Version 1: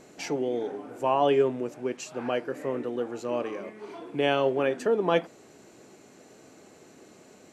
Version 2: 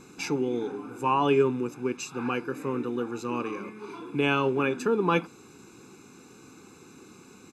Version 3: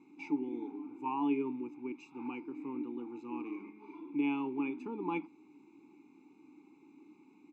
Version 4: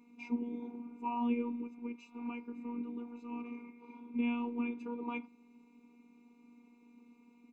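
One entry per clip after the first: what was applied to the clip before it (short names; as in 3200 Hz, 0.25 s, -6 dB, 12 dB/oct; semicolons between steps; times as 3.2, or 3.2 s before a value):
comb 0.8 ms, depth 97%
vowel filter u
robotiser 239 Hz; gain +1 dB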